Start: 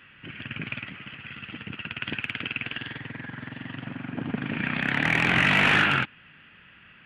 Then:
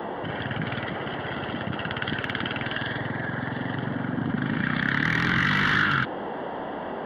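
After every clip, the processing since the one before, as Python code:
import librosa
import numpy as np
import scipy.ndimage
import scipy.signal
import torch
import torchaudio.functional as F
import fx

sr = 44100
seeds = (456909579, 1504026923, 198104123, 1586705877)

y = fx.fixed_phaser(x, sr, hz=2500.0, stages=6)
y = fx.dmg_noise_band(y, sr, seeds[0], low_hz=190.0, high_hz=950.0, level_db=-45.0)
y = fx.env_flatten(y, sr, amount_pct=50)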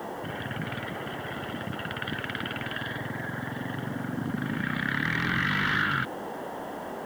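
y = fx.quant_dither(x, sr, seeds[1], bits=8, dither='none')
y = y * librosa.db_to_amplitude(-4.0)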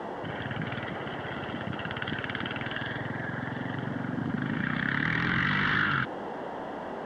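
y = scipy.signal.sosfilt(scipy.signal.butter(2, 4000.0, 'lowpass', fs=sr, output='sos'), x)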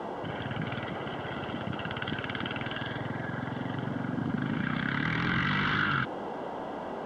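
y = fx.notch(x, sr, hz=1800.0, q=5.8)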